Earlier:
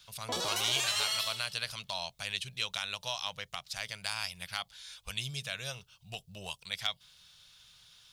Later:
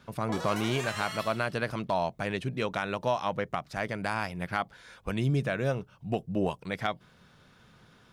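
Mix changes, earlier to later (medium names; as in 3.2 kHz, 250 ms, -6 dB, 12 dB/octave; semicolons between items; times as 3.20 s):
speech: remove amplifier tone stack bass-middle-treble 10-0-10; master: add resonant high shelf 2.5 kHz -9 dB, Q 1.5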